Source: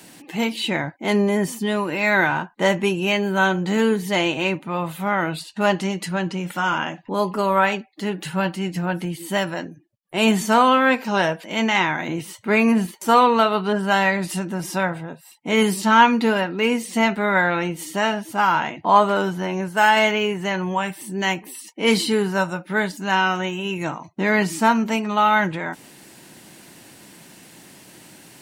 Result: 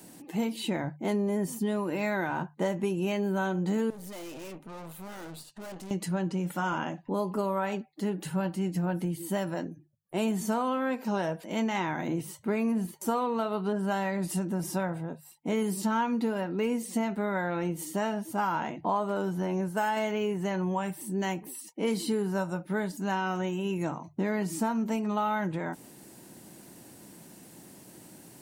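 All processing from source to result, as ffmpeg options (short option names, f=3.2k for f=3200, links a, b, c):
-filter_complex "[0:a]asettb=1/sr,asplit=3[a][b][c];[a]atrim=end=3.904[d];[b]atrim=start=3.9:end=5.91,asetpts=PTS-STARTPTS,afade=t=in:d=0.004:c=qsin,afade=t=out:st=2.006:d=0.004:c=qsin,aeval=exprs='(tanh(44.7*val(0)+0.65)-tanh(0.65))/44.7':c=same,lowshelf=f=260:g=-7.5[e];[c]atrim=start=5.906[f];[d][e]acrossfade=d=0.004:c1=hsin:c2=qsin[g];[g][f]acrossfade=d=0.004:c1=qsin:c2=hsin,equalizer=f=2.6k:t=o:w=2.6:g=-11,bandreject=f=50:t=h:w=6,bandreject=f=100:t=h:w=6,bandreject=f=150:t=h:w=6,acompressor=threshold=-23dB:ratio=6,volume=-2dB"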